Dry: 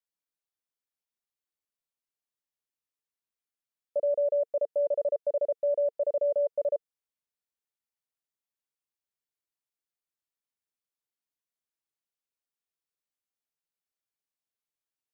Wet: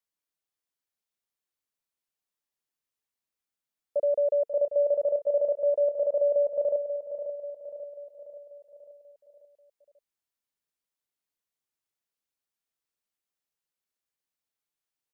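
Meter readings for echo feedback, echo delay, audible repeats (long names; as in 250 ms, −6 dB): 53%, 538 ms, 5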